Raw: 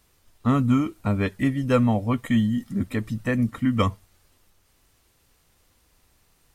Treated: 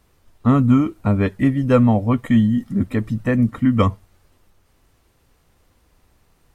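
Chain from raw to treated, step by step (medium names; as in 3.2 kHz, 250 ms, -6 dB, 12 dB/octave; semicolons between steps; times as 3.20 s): treble shelf 2.1 kHz -9.5 dB; trim +6 dB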